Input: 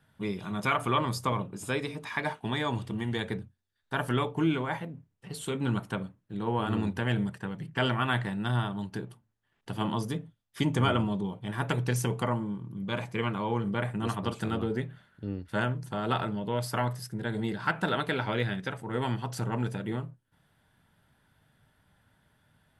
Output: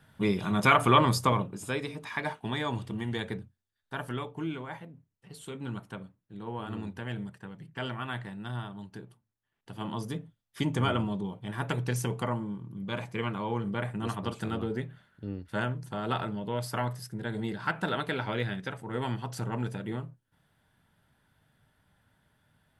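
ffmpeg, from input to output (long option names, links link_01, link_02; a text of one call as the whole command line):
ffmpeg -i in.wav -af "volume=12dB,afade=type=out:start_time=1.08:duration=0.57:silence=0.421697,afade=type=out:start_time=3.17:duration=1.1:silence=0.473151,afade=type=in:start_time=9.72:duration=0.46:silence=0.501187" out.wav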